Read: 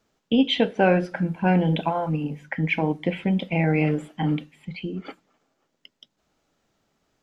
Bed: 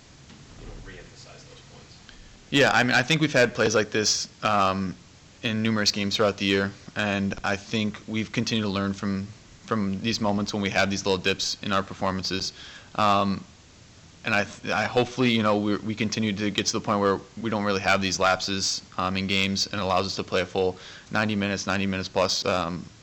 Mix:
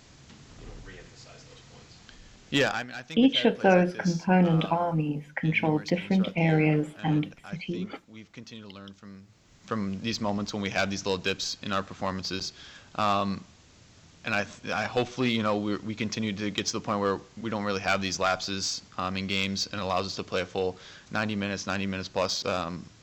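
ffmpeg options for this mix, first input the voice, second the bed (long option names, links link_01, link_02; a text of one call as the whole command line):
ffmpeg -i stem1.wav -i stem2.wav -filter_complex "[0:a]adelay=2850,volume=-1.5dB[link_01];[1:a]volume=11dB,afade=type=out:start_time=2.54:duration=0.32:silence=0.16788,afade=type=in:start_time=9.25:duration=0.51:silence=0.199526[link_02];[link_01][link_02]amix=inputs=2:normalize=0" out.wav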